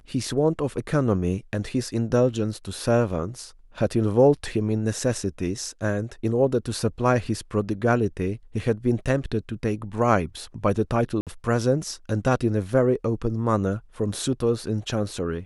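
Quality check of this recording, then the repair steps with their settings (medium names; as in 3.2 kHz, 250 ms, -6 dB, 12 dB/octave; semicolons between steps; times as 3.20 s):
11.21–11.27 s: dropout 57 ms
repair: interpolate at 11.21 s, 57 ms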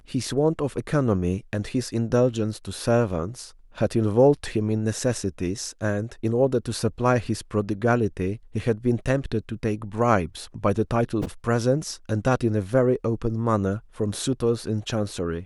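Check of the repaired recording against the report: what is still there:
nothing left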